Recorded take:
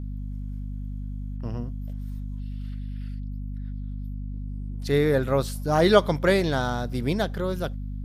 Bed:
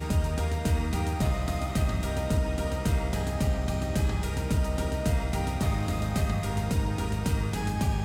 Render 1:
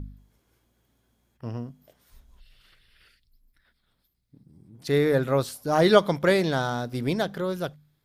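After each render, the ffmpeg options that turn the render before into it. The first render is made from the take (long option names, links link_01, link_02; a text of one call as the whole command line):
ffmpeg -i in.wav -af "bandreject=frequency=50:width_type=h:width=4,bandreject=frequency=100:width_type=h:width=4,bandreject=frequency=150:width_type=h:width=4,bandreject=frequency=200:width_type=h:width=4,bandreject=frequency=250:width_type=h:width=4" out.wav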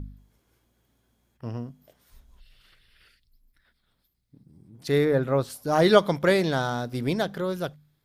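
ffmpeg -i in.wav -filter_complex "[0:a]asplit=3[link_01][link_02][link_03];[link_01]afade=type=out:start_time=5.04:duration=0.02[link_04];[link_02]highshelf=frequency=2800:gain=-10,afade=type=in:start_time=5.04:duration=0.02,afade=type=out:start_time=5.49:duration=0.02[link_05];[link_03]afade=type=in:start_time=5.49:duration=0.02[link_06];[link_04][link_05][link_06]amix=inputs=3:normalize=0" out.wav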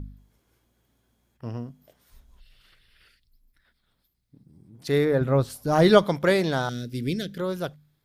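ffmpeg -i in.wav -filter_complex "[0:a]asettb=1/sr,asplit=3[link_01][link_02][link_03];[link_01]atrim=end=5.214[link_04];[link_02]atrim=start=5.21:end=6.04,asetpts=PTS-STARTPTS,afade=type=in:duration=0.004:curve=qsin,afade=type=out:start_time=0.826:duration=0.004:curve=qsin,lowshelf=frequency=150:gain=10.5[link_05];[link_03]atrim=start=6.036[link_06];[link_04][link_05]acrossfade=duration=0.004:curve1=hsin:curve2=qsin[link_07];[link_07][link_06]acrossfade=duration=0.004:curve1=qsin:curve2=hsin,asettb=1/sr,asplit=3[link_08][link_09][link_10];[link_08]atrim=end=6.694[link_11];[link_09]atrim=start=6.69:end=7.38,asetpts=PTS-STARTPTS,afade=type=in:duration=0.004:curve=qsin,afade=type=out:start_time=0.686:duration=0.004:curve=qsin,asuperstop=centerf=910:order=4:qfactor=0.54[link_12];[link_10]atrim=start=7.376[link_13];[link_11][link_12]acrossfade=duration=0.004:curve1=hsin:curve2=qsin[link_14];[link_14][link_13]acrossfade=duration=0.004:curve1=qsin:curve2=hsin" out.wav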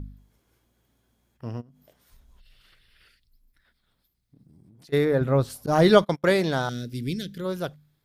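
ffmpeg -i in.wav -filter_complex "[0:a]asplit=3[link_01][link_02][link_03];[link_01]afade=type=out:start_time=1.6:duration=0.02[link_04];[link_02]acompressor=threshold=-49dB:ratio=16:attack=3.2:release=140:knee=1:detection=peak,afade=type=in:start_time=1.6:duration=0.02,afade=type=out:start_time=4.92:duration=0.02[link_05];[link_03]afade=type=in:start_time=4.92:duration=0.02[link_06];[link_04][link_05][link_06]amix=inputs=3:normalize=0,asettb=1/sr,asplit=3[link_07][link_08][link_09];[link_07]atrim=end=5.664[link_10];[link_08]atrim=start=5.66:end=6.24,asetpts=PTS-STARTPTS,afade=type=in:duration=0.004:curve=qsin,afade=type=out:start_time=0.576:duration=0.004:curve=qsin,agate=range=-26dB:threshold=-27dB:ratio=16:release=100:detection=peak[link_11];[link_09]atrim=start=6.236[link_12];[link_10][link_11]acrossfade=duration=0.004:curve1=hsin:curve2=qsin[link_13];[link_13][link_12]acrossfade=duration=0.004:curve1=qsin:curve2=hsin,asplit=3[link_14][link_15][link_16];[link_14]afade=type=out:start_time=6.93:duration=0.02[link_17];[link_15]equalizer=frequency=830:width_type=o:width=1.5:gain=-14,afade=type=in:start_time=6.93:duration=0.02,afade=type=out:start_time=7.44:duration=0.02[link_18];[link_16]afade=type=in:start_time=7.44:duration=0.02[link_19];[link_17][link_18][link_19]amix=inputs=3:normalize=0" out.wav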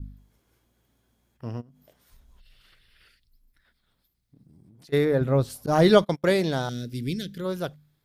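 ffmpeg -i in.wav -af "adynamicequalizer=threshold=0.0141:dfrequency=1300:dqfactor=0.96:tfrequency=1300:tqfactor=0.96:attack=5:release=100:ratio=0.375:range=3:mode=cutabove:tftype=bell" out.wav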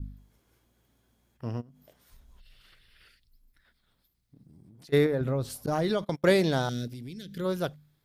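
ffmpeg -i in.wav -filter_complex "[0:a]asettb=1/sr,asplit=3[link_01][link_02][link_03];[link_01]atrim=end=5.064[link_04];[link_02]atrim=start=5.06:end=6.21,asetpts=PTS-STARTPTS,afade=type=in:duration=0.004:curve=qsin,afade=type=out:start_time=1.146:duration=0.004:curve=qsin,acompressor=threshold=-24dB:ratio=6:attack=3.2:release=140:knee=1:detection=peak[link_05];[link_03]atrim=start=6.206[link_06];[link_04][link_05]acrossfade=duration=0.004:curve1=hsin:curve2=qsin[link_07];[link_07][link_06]acrossfade=duration=0.004:curve1=qsin:curve2=hsin,asettb=1/sr,asplit=3[link_08][link_09][link_10];[link_08]atrim=end=6.874[link_11];[link_09]atrim=start=6.87:end=7.34,asetpts=PTS-STARTPTS,afade=type=in:duration=0.004:curve=qsin,afade=type=out:start_time=0.466:duration=0.004:curve=qsin,acompressor=threshold=-38dB:ratio=6:attack=3.2:release=140:knee=1:detection=peak[link_12];[link_10]atrim=start=7.336[link_13];[link_11][link_12]acrossfade=duration=0.004:curve1=hsin:curve2=qsin[link_14];[link_14][link_13]acrossfade=duration=0.004:curve1=qsin:curve2=hsin" out.wav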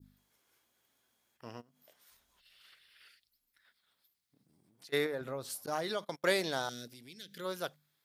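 ffmpeg -i in.wav -af "highpass=frequency=1200:poles=1,adynamicequalizer=threshold=0.00251:dfrequency=2700:dqfactor=0.97:tfrequency=2700:tqfactor=0.97:attack=5:release=100:ratio=0.375:range=3:mode=cutabove:tftype=bell" out.wav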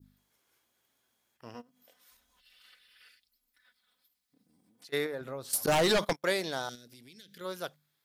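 ffmpeg -i in.wav -filter_complex "[0:a]asettb=1/sr,asplit=3[link_01][link_02][link_03];[link_01]atrim=end=1.544[link_04];[link_02]atrim=start=1.54:end=4.87,asetpts=PTS-STARTPTS,afade=type=in:duration=0.004:curve=qsin,afade=type=out:start_time=3.326:duration=0.004:curve=qsin,aecho=1:1:4:0.65,atrim=end_sample=146853[link_05];[link_03]atrim=start=4.866[link_06];[link_04][link_05]acrossfade=duration=0.004:curve1=hsin:curve2=qsin[link_07];[link_07][link_06]acrossfade=duration=0.004:curve1=qsin:curve2=hsin,asettb=1/sr,asplit=3[link_08][link_09][link_10];[link_08]atrim=end=5.534[link_11];[link_09]atrim=start=5.53:end=6.13,asetpts=PTS-STARTPTS,afade=type=in:duration=0.004:curve=qsin,afade=type=out:start_time=0.596:duration=0.004:curve=qsin,aeval=exprs='0.0891*sin(PI/2*3.55*val(0)/0.0891)':channel_layout=same[link_12];[link_10]atrim=start=6.126[link_13];[link_11][link_12]acrossfade=duration=0.004:curve1=hsin:curve2=qsin[link_14];[link_14][link_13]acrossfade=duration=0.004:curve1=qsin:curve2=hsin,asettb=1/sr,asplit=3[link_15][link_16][link_17];[link_15]atrim=end=6.754[link_18];[link_16]atrim=start=6.75:end=7.41,asetpts=PTS-STARTPTS,afade=type=in:duration=0.004:curve=qsin,afade=type=out:start_time=0.656:duration=0.004:curve=qsin,acompressor=threshold=-48dB:ratio=6:attack=3.2:release=140:knee=1:detection=peak[link_19];[link_17]atrim=start=7.406[link_20];[link_18][link_19]acrossfade=duration=0.004:curve1=hsin:curve2=qsin[link_21];[link_21][link_20]acrossfade=duration=0.004:curve1=qsin:curve2=hsin" out.wav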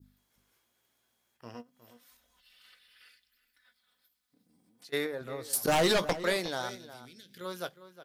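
ffmpeg -i in.wav -filter_complex "[0:a]asplit=2[link_01][link_02];[link_02]adelay=17,volume=-12dB[link_03];[link_01][link_03]amix=inputs=2:normalize=0,asplit=2[link_04][link_05];[link_05]adelay=361.5,volume=-14dB,highshelf=frequency=4000:gain=-8.13[link_06];[link_04][link_06]amix=inputs=2:normalize=0" out.wav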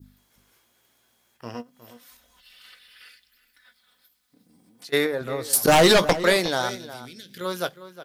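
ffmpeg -i in.wav -af "volume=10dB" out.wav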